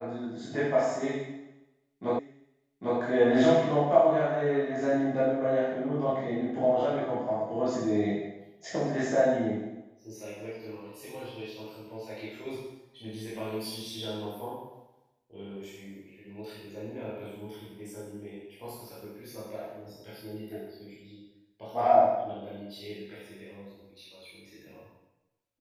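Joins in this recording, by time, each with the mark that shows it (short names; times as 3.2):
2.19 repeat of the last 0.8 s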